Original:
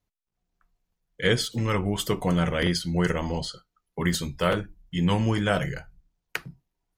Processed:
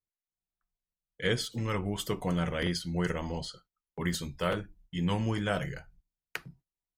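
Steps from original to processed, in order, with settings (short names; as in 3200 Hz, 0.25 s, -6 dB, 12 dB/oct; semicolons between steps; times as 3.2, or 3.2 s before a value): gate -52 dBFS, range -12 dB; gain -6.5 dB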